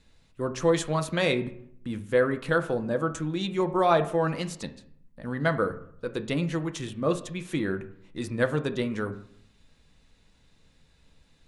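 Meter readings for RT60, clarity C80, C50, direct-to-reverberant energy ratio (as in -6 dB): 0.65 s, 17.0 dB, 14.0 dB, 7.5 dB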